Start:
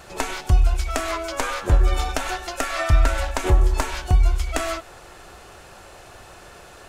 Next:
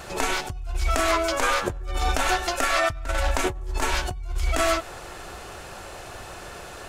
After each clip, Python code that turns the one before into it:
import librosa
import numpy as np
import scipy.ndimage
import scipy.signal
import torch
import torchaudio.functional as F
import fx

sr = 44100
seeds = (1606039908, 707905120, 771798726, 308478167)

y = fx.over_compress(x, sr, threshold_db=-25.0, ratio=-1.0)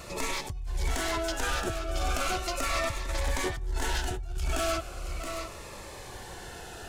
y = 10.0 ** (-20.0 / 20.0) * np.tanh(x / 10.0 ** (-20.0 / 20.0))
y = y + 10.0 ** (-7.0 / 20.0) * np.pad(y, (int(673 * sr / 1000.0), 0))[:len(y)]
y = fx.notch_cascade(y, sr, direction='falling', hz=0.37)
y = y * librosa.db_to_amplitude(-2.5)